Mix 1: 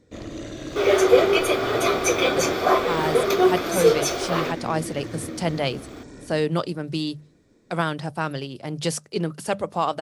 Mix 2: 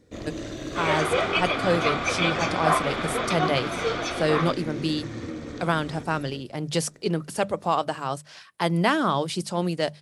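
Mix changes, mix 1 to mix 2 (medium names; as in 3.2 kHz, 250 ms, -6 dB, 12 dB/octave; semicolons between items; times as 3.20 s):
speech: entry -2.10 s; second sound: add Butterworth band-pass 1.7 kHz, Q 0.56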